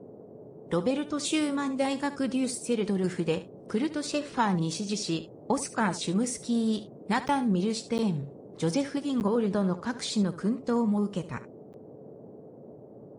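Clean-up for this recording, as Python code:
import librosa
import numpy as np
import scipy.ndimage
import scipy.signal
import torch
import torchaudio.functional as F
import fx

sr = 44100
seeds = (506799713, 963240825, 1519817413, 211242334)

y = fx.notch(x, sr, hz=430.0, q=30.0)
y = fx.fix_interpolate(y, sr, at_s=(7.28, 7.98, 9.2, 11.73), length_ms=9.3)
y = fx.noise_reduce(y, sr, print_start_s=12.5, print_end_s=13.0, reduce_db=26.0)
y = fx.fix_echo_inverse(y, sr, delay_ms=72, level_db=-14.5)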